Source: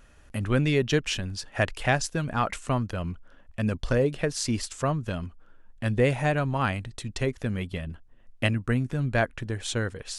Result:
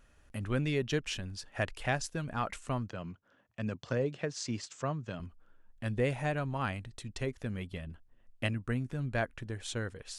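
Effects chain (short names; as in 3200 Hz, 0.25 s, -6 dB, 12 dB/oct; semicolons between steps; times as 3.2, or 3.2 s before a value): 2.89–5.2 elliptic band-pass 110–7100 Hz, stop band 40 dB; gain -8 dB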